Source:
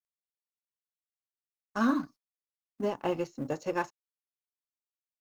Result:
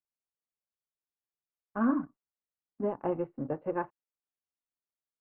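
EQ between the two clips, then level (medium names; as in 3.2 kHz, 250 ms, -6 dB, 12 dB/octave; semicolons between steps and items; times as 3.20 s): Gaussian low-pass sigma 5.3 samples; 0.0 dB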